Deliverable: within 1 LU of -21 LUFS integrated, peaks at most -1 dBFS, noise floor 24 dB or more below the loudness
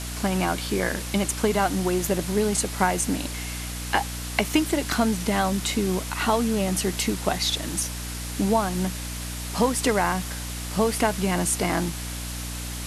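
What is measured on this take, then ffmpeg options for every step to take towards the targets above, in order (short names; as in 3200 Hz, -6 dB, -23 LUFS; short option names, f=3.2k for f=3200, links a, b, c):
hum 60 Hz; harmonics up to 300 Hz; hum level -32 dBFS; noise floor -33 dBFS; noise floor target -49 dBFS; loudness -25.0 LUFS; peak -3.5 dBFS; loudness target -21.0 LUFS
-> -af "bandreject=f=60:t=h:w=4,bandreject=f=120:t=h:w=4,bandreject=f=180:t=h:w=4,bandreject=f=240:t=h:w=4,bandreject=f=300:t=h:w=4"
-af "afftdn=nr=16:nf=-33"
-af "volume=4dB,alimiter=limit=-1dB:level=0:latency=1"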